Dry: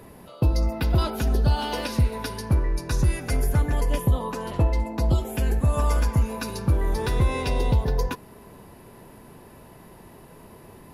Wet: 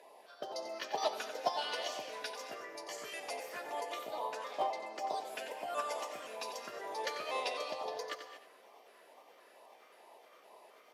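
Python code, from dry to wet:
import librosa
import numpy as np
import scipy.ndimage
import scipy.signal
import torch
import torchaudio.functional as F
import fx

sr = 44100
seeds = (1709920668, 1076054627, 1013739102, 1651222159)

y = fx.pitch_trill(x, sr, semitones=3.0, every_ms=261)
y = fx.filter_lfo_notch(y, sr, shape='sine', hz=2.2, low_hz=780.0, high_hz=1600.0, q=0.86)
y = fx.ladder_highpass(y, sr, hz=570.0, resonance_pct=35)
y = fx.air_absorb(y, sr, metres=60.0)
y = y + 10.0 ** (-10.0 / 20.0) * np.pad(y, (int(91 * sr / 1000.0), 0))[:len(y)]
y = fx.rev_gated(y, sr, seeds[0], gate_ms=260, shape='rising', drr_db=9.5)
y = fx.upward_expand(y, sr, threshold_db=-41.0, expansion=2.5)
y = F.gain(torch.from_numpy(y), 9.5).numpy()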